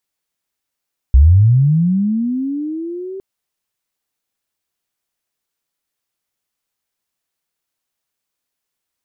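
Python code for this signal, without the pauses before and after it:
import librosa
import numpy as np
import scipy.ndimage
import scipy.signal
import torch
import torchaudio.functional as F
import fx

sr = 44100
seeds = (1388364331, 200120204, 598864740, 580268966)

y = fx.chirp(sr, length_s=2.06, from_hz=60.0, to_hz=390.0, law='linear', from_db=-3.5, to_db=-25.0)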